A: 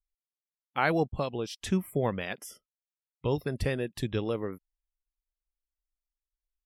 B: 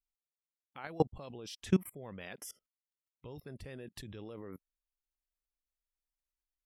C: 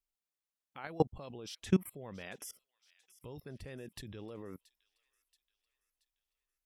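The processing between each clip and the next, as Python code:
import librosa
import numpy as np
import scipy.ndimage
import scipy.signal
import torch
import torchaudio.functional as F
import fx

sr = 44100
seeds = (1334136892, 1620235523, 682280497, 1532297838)

y1 = fx.level_steps(x, sr, step_db=24)
y1 = y1 * librosa.db_to_amplitude(2.0)
y2 = fx.echo_wet_highpass(y1, sr, ms=678, feedback_pct=49, hz=2700.0, wet_db=-17.5)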